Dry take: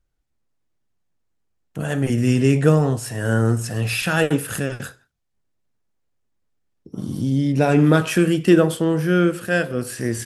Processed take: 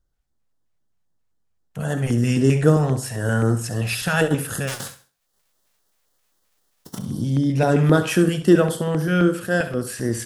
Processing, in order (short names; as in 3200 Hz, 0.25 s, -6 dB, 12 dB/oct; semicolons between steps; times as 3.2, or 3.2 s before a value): 4.67–6.97 spectral whitening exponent 0.3; LFO notch square 3.8 Hz 320–2400 Hz; flutter echo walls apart 11.5 m, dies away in 0.33 s